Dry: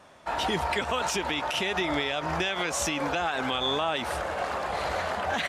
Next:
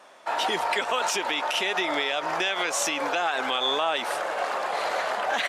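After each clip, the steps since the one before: high-pass 400 Hz 12 dB/octave; trim +3 dB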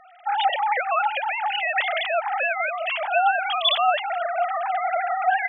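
formants replaced by sine waves; trim +3.5 dB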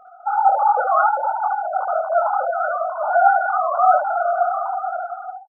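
fade out at the end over 1.36 s; FFT band-pass 450–1500 Hz; early reflections 23 ms -4.5 dB, 72 ms -4 dB; trim +4 dB

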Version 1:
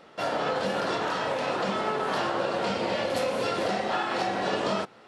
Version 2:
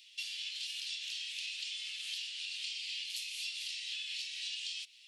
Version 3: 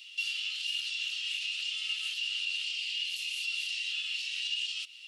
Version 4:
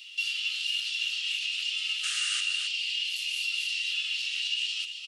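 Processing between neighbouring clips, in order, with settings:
steep high-pass 2.6 kHz 48 dB/octave; compression 5:1, threshold -44 dBFS, peak gain reduction 9.5 dB; trim +6 dB
peak limiter -34.5 dBFS, peak gain reduction 8.5 dB; small resonant body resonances 1.3/2.8 kHz, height 14 dB, ringing for 20 ms; trim +4 dB
painted sound noise, 2.03–2.41 s, 1.2–9.7 kHz -38 dBFS; delay 268 ms -8 dB; trim +3 dB

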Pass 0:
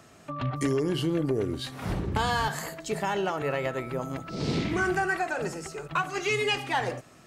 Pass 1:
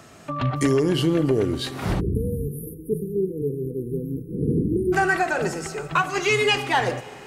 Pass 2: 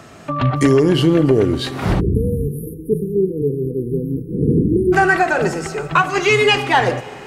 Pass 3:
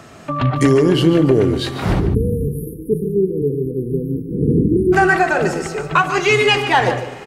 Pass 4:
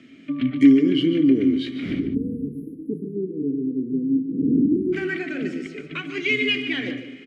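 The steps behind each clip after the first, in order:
Schroeder reverb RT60 3.7 s, combs from 33 ms, DRR 17 dB; spectral selection erased 2.00–4.93 s, 510–9400 Hz; trim +6.5 dB
treble shelf 5.3 kHz -7 dB; trim +7 dB
echo from a far wall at 25 m, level -11 dB
vowel filter i; trim +5 dB

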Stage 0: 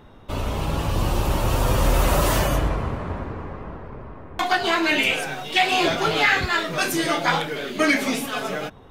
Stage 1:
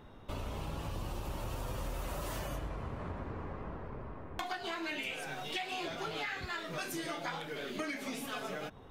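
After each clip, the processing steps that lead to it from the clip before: compression 6:1, threshold -30 dBFS, peak gain reduction 15 dB; trim -6.5 dB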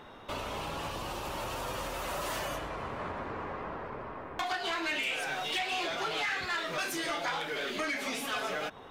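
overdrive pedal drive 18 dB, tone 6.2 kHz, clips at -21 dBFS; trim -2 dB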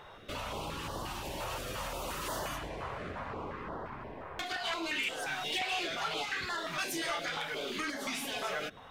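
step-sequenced notch 5.7 Hz 260–2400 Hz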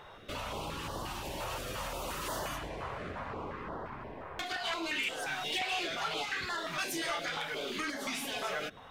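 no audible change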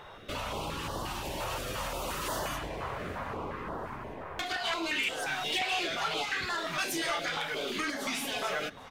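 feedback delay 787 ms, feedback 50%, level -23 dB; trim +3 dB

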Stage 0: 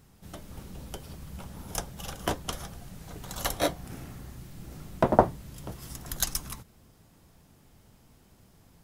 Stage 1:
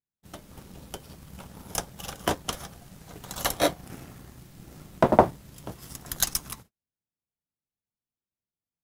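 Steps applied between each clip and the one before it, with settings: bass shelf 69 Hz -9.5 dB; gate -50 dBFS, range -38 dB; waveshaping leveller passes 1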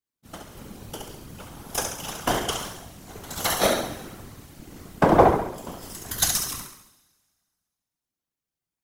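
flutter echo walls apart 11.7 m, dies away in 0.7 s; two-slope reverb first 0.51 s, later 1.9 s, from -24 dB, DRR 1 dB; whisper effect; trim +1 dB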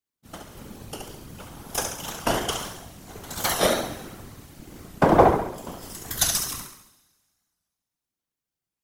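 warped record 45 rpm, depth 100 cents

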